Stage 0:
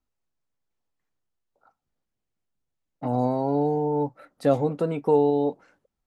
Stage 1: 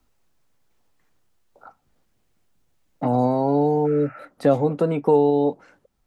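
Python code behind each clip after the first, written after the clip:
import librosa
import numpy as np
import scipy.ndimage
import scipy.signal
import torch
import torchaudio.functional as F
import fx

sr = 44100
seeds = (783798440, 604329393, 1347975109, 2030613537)

y = fx.spec_repair(x, sr, seeds[0], start_s=3.88, length_s=0.29, low_hz=600.0, high_hz=2900.0, source='after')
y = fx.band_squash(y, sr, depth_pct=40)
y = F.gain(torch.from_numpy(y), 4.0).numpy()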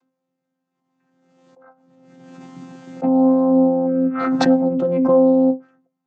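y = fx.chord_vocoder(x, sr, chord='bare fifth', root=53)
y = fx.comb_fb(y, sr, f0_hz=130.0, decay_s=0.19, harmonics='all', damping=0.0, mix_pct=80)
y = fx.pre_swell(y, sr, db_per_s=33.0)
y = F.gain(torch.from_numpy(y), 6.0).numpy()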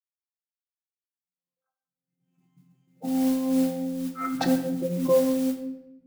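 y = fx.bin_expand(x, sr, power=2.0)
y = fx.mod_noise(y, sr, seeds[1], snr_db=19)
y = fx.room_shoebox(y, sr, seeds[2], volume_m3=350.0, walls='mixed', distance_m=0.68)
y = F.gain(torch.from_numpy(y), -6.0).numpy()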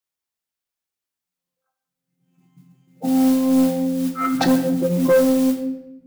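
y = 10.0 ** (-18.5 / 20.0) * np.tanh(x / 10.0 ** (-18.5 / 20.0))
y = F.gain(torch.from_numpy(y), 9.0).numpy()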